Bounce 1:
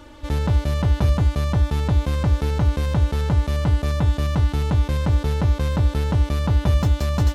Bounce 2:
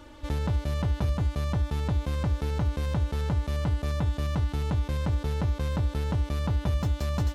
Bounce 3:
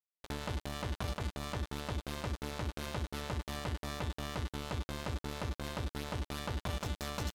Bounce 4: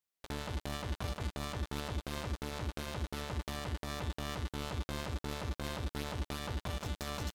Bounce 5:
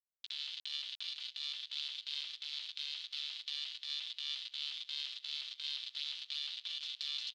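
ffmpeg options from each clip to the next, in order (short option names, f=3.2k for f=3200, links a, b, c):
-af "acompressor=threshold=-21dB:ratio=2,volume=-4.5dB"
-af "aeval=exprs='0.158*(cos(1*acos(clip(val(0)/0.158,-1,1)))-cos(1*PI/2))+0.00891*(cos(3*acos(clip(val(0)/0.158,-1,1)))-cos(3*PI/2))+0.0251*(cos(7*acos(clip(val(0)/0.158,-1,1)))-cos(7*PI/2))':c=same,aeval=exprs='sgn(val(0))*max(abs(val(0))-0.00708,0)':c=same,tiltshelf=f=920:g=-5,volume=-6dB"
-af "alimiter=level_in=7.5dB:limit=-24dB:level=0:latency=1:release=154,volume=-7.5dB,volume=5dB"
-af "acrusher=bits=7:mix=0:aa=0.000001,asuperpass=centerf=3700:order=4:qfactor=2.3,aecho=1:1:775|1550|2325:0.158|0.0586|0.0217,volume=10dB"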